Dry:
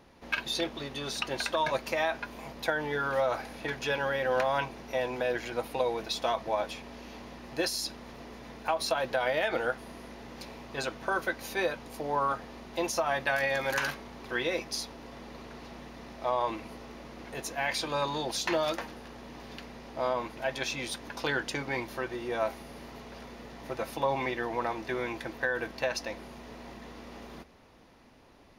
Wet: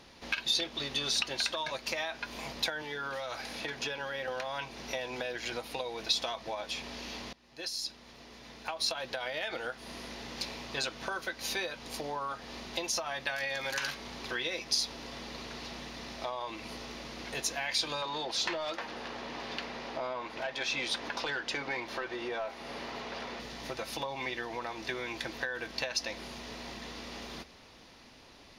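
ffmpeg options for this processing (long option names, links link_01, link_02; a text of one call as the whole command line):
ffmpeg -i in.wav -filter_complex "[0:a]asettb=1/sr,asplit=3[link_01][link_02][link_03];[link_01]atrim=end=2.824[link_04];[link_02]atrim=start=2.82:end=4.28,asetpts=PTS-STARTPTS,afade=type=in:duration=0.004:curve=qsin,afade=type=out:start_time=1.456:duration=0.004:curve=qsin,acrossover=split=150|1500[link_05][link_06][link_07];[link_05]acompressor=threshold=-57dB:ratio=4[link_08];[link_06]acompressor=threshold=-37dB:ratio=4[link_09];[link_07]acompressor=threshold=-45dB:ratio=4[link_10];[link_08][link_09][link_10]amix=inputs=3:normalize=0[link_11];[link_03]atrim=start=4.276[link_12];[link_04][link_11]acrossfade=duration=0.004:curve1=hsin:curve2=qsin[link_13];[link_13][link_12]acrossfade=duration=0.004:curve1=qsin:curve2=hsin,asettb=1/sr,asplit=3[link_14][link_15][link_16];[link_14]atrim=end=18.024[link_17];[link_15]atrim=start=18.02:end=23.4,asetpts=PTS-STARTPTS,afade=type=in:duration=0.004:curve=qsin,afade=type=out:start_time=5.376:duration=0.004:curve=qsin,asplit=2[link_18][link_19];[link_19]highpass=frequency=720:poles=1,volume=15dB,asoftclip=type=tanh:threshold=-15dB[link_20];[link_18][link_20]amix=inputs=2:normalize=0,lowpass=frequency=1100:poles=1,volume=-6dB[link_21];[link_16]atrim=start=23.396[link_22];[link_17][link_21]acrossfade=duration=0.004:curve1=hsin:curve2=qsin[link_23];[link_23][link_22]acrossfade=duration=0.004:curve1=qsin:curve2=hsin,asplit=2[link_24][link_25];[link_24]atrim=end=7.33,asetpts=PTS-STARTPTS,afade=type=out:start_time=7.326:duration=0.004:curve=hsin:silence=0.0707946[link_26];[link_25]atrim=start=7.33,asetpts=PTS-STARTPTS,afade=type=in:duration=2.86:silence=0.0707946[link_27];[link_26][link_27]concat=n=2:v=0:a=1,acompressor=threshold=-36dB:ratio=5,equalizer=frequency=4500:width_type=o:width=2.1:gain=11.5" out.wav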